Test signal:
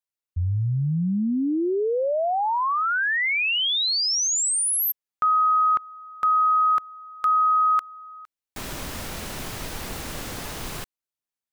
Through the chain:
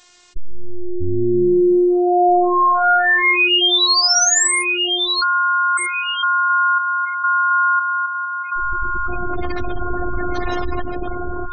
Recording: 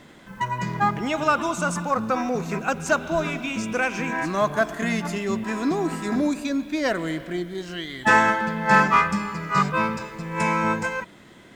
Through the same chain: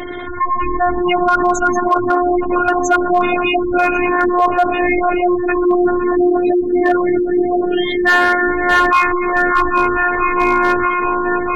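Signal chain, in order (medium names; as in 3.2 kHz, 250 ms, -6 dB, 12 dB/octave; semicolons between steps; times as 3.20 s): steep low-pass 7.8 kHz 48 dB/octave; on a send: echo whose repeats swap between lows and highs 639 ms, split 930 Hz, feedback 65%, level -5 dB; on the sum: spectral gate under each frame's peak -15 dB strong; robot voice 356 Hz; in parallel at -3.5 dB: wavefolder -16 dBFS; on the sum: level flattener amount 50%; trim +5 dB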